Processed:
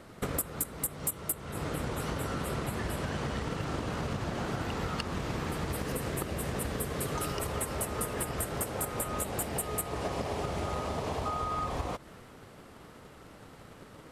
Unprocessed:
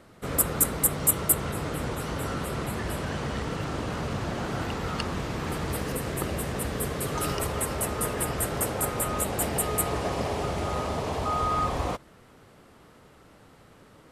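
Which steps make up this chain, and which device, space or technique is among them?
drum-bus smash (transient designer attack +8 dB, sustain +2 dB; downward compressor 6 to 1, threshold −32 dBFS, peak gain reduction 21 dB; soft clipping −20.5 dBFS, distortion −24 dB)
level +2 dB

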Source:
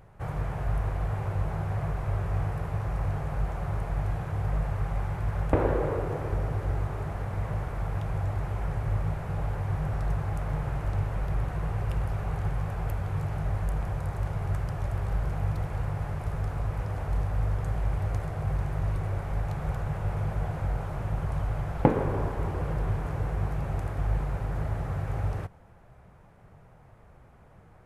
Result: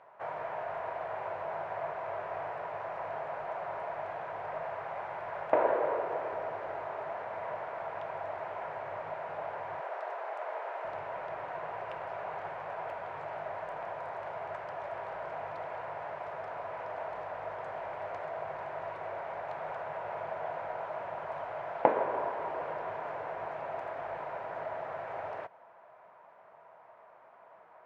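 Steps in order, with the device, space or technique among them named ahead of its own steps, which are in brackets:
0:09.80–0:10.85: Butterworth high-pass 350 Hz 36 dB per octave
tin-can telephone (band-pass filter 660–2,400 Hz; hollow resonant body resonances 650/960 Hz, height 10 dB, ringing for 30 ms)
dynamic equaliser 1,100 Hz, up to −5 dB, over −51 dBFS, Q 2.5
level +2 dB

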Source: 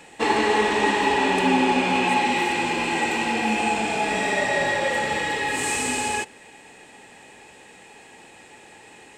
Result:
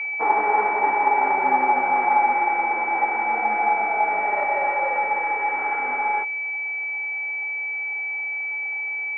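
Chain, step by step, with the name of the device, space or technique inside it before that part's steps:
toy sound module (linearly interpolated sample-rate reduction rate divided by 8×; switching amplifier with a slow clock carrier 2,300 Hz; loudspeaker in its box 580–4,500 Hz, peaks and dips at 810 Hz +9 dB, 1,400 Hz +8 dB, 2,100 Hz +8 dB, 3,900 Hz −7 dB)

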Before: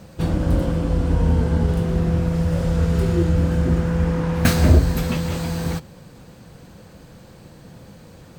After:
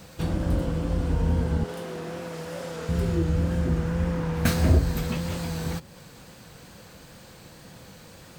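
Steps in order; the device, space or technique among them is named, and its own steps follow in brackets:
0:01.64–0:02.89: high-pass filter 340 Hz 12 dB per octave
noise-reduction cassette on a plain deck (one half of a high-frequency compander encoder only; tape wow and flutter; white noise bed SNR 41 dB)
level −6 dB

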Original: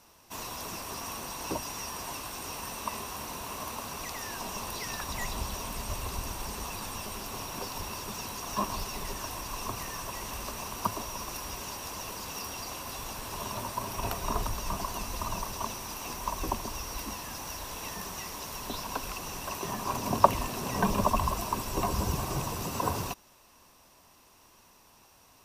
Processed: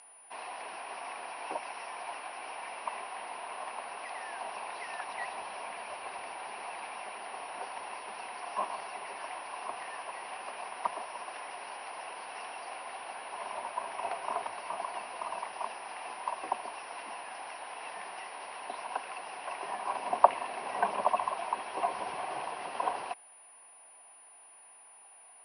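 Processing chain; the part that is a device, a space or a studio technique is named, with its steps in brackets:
toy sound module (linearly interpolated sample-rate reduction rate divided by 4×; switching amplifier with a slow clock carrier 9,700 Hz; loudspeaker in its box 660–4,700 Hz, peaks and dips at 740 Hz +8 dB, 1,200 Hz −5 dB, 3,600 Hz −10 dB)

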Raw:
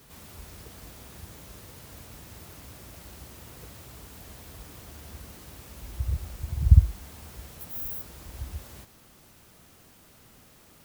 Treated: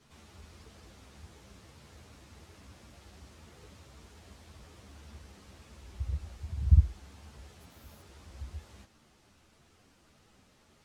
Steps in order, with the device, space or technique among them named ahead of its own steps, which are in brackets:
string-machine ensemble chorus (string-ensemble chorus; low-pass filter 6,900 Hz 12 dB per octave)
level −3.5 dB

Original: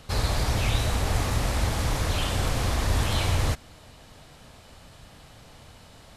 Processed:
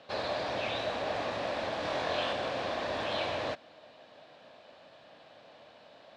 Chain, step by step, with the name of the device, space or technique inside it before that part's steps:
parametric band 11,000 Hz +14.5 dB 1.1 octaves
0:01.80–0:02.33: flutter between parallel walls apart 4 metres, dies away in 0.34 s
phone earpiece (loudspeaker in its box 390–3,300 Hz, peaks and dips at 420 Hz −4 dB, 600 Hz +6 dB, 890 Hz −4 dB, 1,300 Hz −7 dB, 2,100 Hz −7 dB, 3,000 Hz −5 dB)

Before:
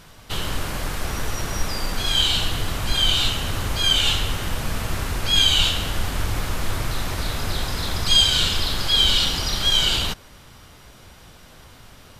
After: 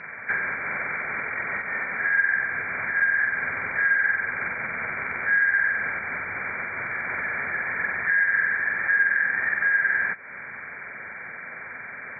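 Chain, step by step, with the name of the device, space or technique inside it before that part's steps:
hearing aid with frequency lowering (hearing-aid frequency compression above 1,300 Hz 4 to 1; downward compressor 4 to 1, threshold −32 dBFS, peak gain reduction 18 dB; loudspeaker in its box 250–5,200 Hz, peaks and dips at 310 Hz −8 dB, 1,600 Hz +5 dB, 2,600 Hz +6 dB, 4,000 Hz +5 dB)
level +5.5 dB

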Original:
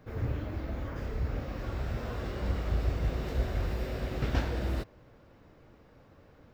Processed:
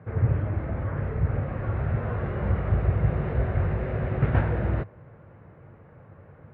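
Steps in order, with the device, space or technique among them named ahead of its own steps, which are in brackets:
bass cabinet (loudspeaker in its box 66–2,100 Hz, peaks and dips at 100 Hz +8 dB, 150 Hz +7 dB, 280 Hz −7 dB)
level +6.5 dB

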